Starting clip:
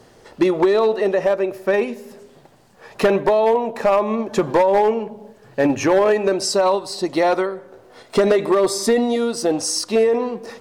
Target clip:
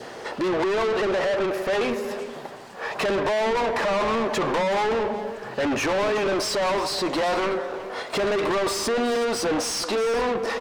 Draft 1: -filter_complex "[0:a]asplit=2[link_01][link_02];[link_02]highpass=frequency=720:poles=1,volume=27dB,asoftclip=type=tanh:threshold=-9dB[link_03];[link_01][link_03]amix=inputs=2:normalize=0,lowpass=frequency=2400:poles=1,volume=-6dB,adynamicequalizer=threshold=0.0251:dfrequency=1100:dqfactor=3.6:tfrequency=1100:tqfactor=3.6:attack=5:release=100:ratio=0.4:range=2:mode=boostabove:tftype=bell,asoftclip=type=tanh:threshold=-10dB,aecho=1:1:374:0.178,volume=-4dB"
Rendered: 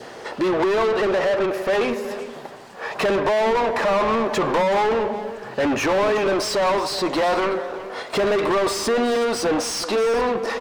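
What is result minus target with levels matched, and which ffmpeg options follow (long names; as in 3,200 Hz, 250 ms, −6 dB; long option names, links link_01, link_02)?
soft clipping: distortion −9 dB
-filter_complex "[0:a]asplit=2[link_01][link_02];[link_02]highpass=frequency=720:poles=1,volume=27dB,asoftclip=type=tanh:threshold=-9dB[link_03];[link_01][link_03]amix=inputs=2:normalize=0,lowpass=frequency=2400:poles=1,volume=-6dB,adynamicequalizer=threshold=0.0251:dfrequency=1100:dqfactor=3.6:tfrequency=1100:tqfactor=3.6:attack=5:release=100:ratio=0.4:range=2:mode=boostabove:tftype=bell,asoftclip=type=tanh:threshold=-17dB,aecho=1:1:374:0.178,volume=-4dB"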